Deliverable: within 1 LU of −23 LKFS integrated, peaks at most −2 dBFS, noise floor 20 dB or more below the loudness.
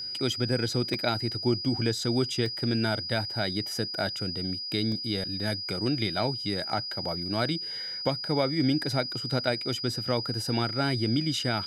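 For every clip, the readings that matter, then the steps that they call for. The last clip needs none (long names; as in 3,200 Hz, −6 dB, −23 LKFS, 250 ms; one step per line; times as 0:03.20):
number of dropouts 3; longest dropout 1.9 ms; interfering tone 4,900 Hz; level of the tone −33 dBFS; integrated loudness −28.5 LKFS; sample peak −11.5 dBFS; target loudness −23.0 LKFS
→ repair the gap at 0:00.94/0:02.46/0:04.92, 1.9 ms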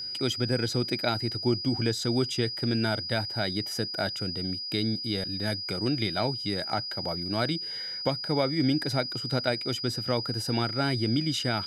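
number of dropouts 0; interfering tone 4,900 Hz; level of the tone −33 dBFS
→ notch filter 4,900 Hz, Q 30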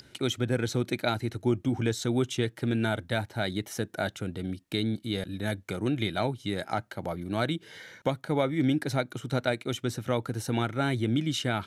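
interfering tone none found; integrated loudness −30.0 LKFS; sample peak −12.0 dBFS; target loudness −23.0 LKFS
→ level +7 dB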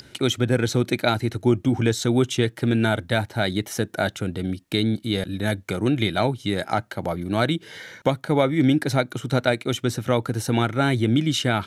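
integrated loudness −23.0 LKFS; sample peak −5.0 dBFS; background noise floor −51 dBFS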